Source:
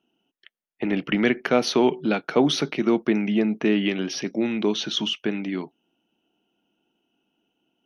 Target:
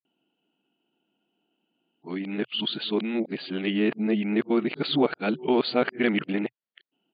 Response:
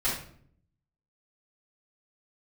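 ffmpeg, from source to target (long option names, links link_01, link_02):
-af "areverse,afftfilt=real='re*between(b*sr/4096,120,4800)':imag='im*between(b*sr/4096,120,4800)':win_size=4096:overlap=0.75,atempo=1.1,volume=-3dB"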